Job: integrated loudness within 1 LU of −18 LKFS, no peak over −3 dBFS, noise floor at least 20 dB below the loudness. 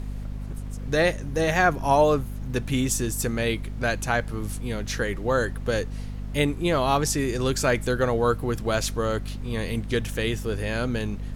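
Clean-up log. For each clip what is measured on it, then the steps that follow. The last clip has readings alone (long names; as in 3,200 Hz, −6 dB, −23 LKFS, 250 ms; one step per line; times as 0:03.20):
mains hum 50 Hz; hum harmonics up to 250 Hz; level of the hum −30 dBFS; background noise floor −34 dBFS; target noise floor −46 dBFS; integrated loudness −25.5 LKFS; sample peak −7.5 dBFS; target loudness −18.0 LKFS
→ mains-hum notches 50/100/150/200/250 Hz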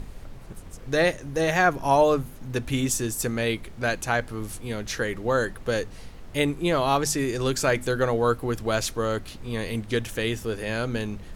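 mains hum none found; background noise floor −42 dBFS; target noise floor −46 dBFS
→ noise reduction from a noise print 6 dB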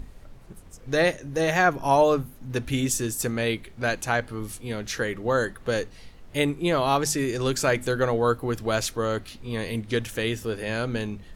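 background noise floor −47 dBFS; integrated loudness −25.5 LKFS; sample peak −8.0 dBFS; target loudness −18.0 LKFS
→ level +7.5 dB
brickwall limiter −3 dBFS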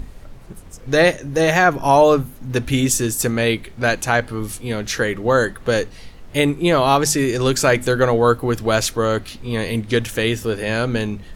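integrated loudness −18.5 LKFS; sample peak −3.0 dBFS; background noise floor −39 dBFS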